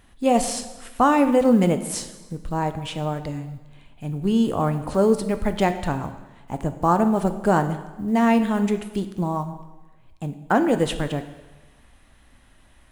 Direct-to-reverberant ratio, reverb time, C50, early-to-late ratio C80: 9.0 dB, 1.1 s, 11.5 dB, 13.0 dB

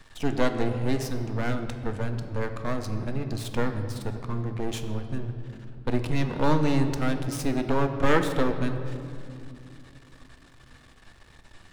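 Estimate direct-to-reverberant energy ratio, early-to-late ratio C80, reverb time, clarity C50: 6.0 dB, 9.5 dB, 2.5 s, 8.5 dB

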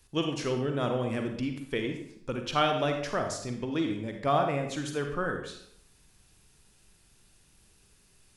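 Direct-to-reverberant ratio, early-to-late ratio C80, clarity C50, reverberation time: 4.0 dB, 8.5 dB, 5.5 dB, 0.70 s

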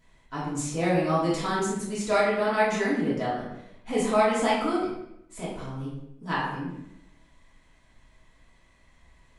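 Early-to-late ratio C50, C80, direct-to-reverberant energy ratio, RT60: 2.0 dB, 5.0 dB, -8.5 dB, 0.80 s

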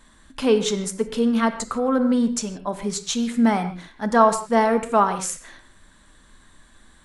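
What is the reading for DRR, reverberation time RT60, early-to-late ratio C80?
8.5 dB, no single decay rate, 12.5 dB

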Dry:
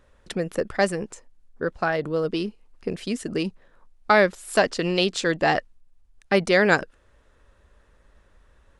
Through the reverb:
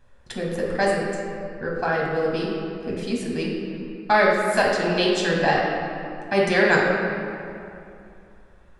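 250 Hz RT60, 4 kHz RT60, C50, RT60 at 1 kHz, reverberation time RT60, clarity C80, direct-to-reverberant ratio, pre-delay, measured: 2.9 s, 1.6 s, 0.5 dB, 2.6 s, 2.6 s, 2.0 dB, -3.5 dB, 8 ms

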